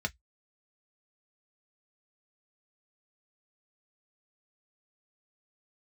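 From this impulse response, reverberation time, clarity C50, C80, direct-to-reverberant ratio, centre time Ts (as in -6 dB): 0.10 s, 32.5 dB, 48.5 dB, 3.5 dB, 4 ms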